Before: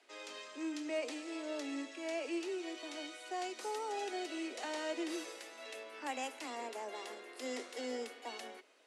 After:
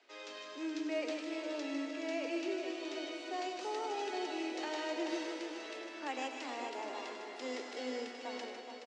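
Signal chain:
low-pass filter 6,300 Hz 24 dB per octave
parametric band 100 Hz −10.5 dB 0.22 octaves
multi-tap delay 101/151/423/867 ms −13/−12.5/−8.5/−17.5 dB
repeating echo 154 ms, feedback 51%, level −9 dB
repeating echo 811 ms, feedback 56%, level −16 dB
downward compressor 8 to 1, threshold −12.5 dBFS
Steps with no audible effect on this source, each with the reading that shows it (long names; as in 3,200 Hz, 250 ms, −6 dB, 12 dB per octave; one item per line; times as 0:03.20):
parametric band 100 Hz: nothing at its input below 210 Hz
downward compressor, threshold −12.5 dBFS: peak of its input −26.0 dBFS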